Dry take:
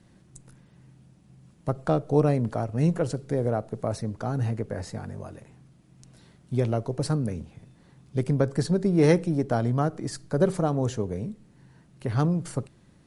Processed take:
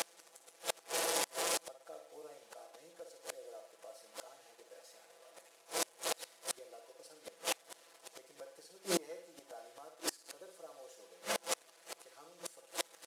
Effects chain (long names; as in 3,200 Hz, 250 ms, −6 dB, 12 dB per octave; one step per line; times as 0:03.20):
linear delta modulator 64 kbit/s, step −32 dBFS
high-shelf EQ 2,900 Hz +8.5 dB
comb filter 6 ms, depth 95%
in parallel at −1 dB: downward compressor 12 to 1, threshold −29 dBFS, peak gain reduction 20.5 dB
on the sum: leveller curve on the samples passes 1
four-pole ladder high-pass 440 Hz, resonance 40%
flutter between parallel walls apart 9.6 metres, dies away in 0.52 s
gate with flip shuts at −21 dBFS, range −31 dB
level +2 dB